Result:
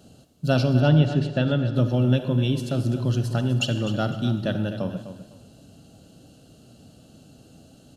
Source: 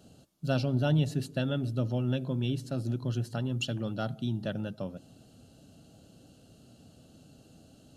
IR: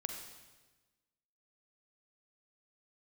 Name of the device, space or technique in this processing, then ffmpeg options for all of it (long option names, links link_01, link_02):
keyed gated reverb: -filter_complex "[0:a]asettb=1/sr,asplit=3[link_01][link_02][link_03];[link_01]atrim=end=0.804[link_04];[link_02]atrim=start=0.8:end=1.75,asetpts=PTS-STARTPTS,afade=type=in:duration=0.004:curve=qsin,afade=type=out:start_time=0.946:duration=0.004:curve=qsin,lowpass=3700[link_05];[link_03]atrim=start=1.746[link_06];[link_04][link_05]acrossfade=duration=0.004:curve1=hsin:curve2=qsin[link_07];[link_07][link_06]acrossfade=duration=0.004:curve1=qsin:curve2=hsin,asplit=3[link_08][link_09][link_10];[1:a]atrim=start_sample=2205[link_11];[link_09][link_11]afir=irnorm=-1:irlink=0[link_12];[link_10]apad=whole_len=351438[link_13];[link_12][link_13]sidechaingate=range=-7dB:threshold=-46dB:ratio=16:detection=peak,volume=1.5dB[link_14];[link_08][link_14]amix=inputs=2:normalize=0,aecho=1:1:253|506|759:0.251|0.0653|0.017,volume=2dB"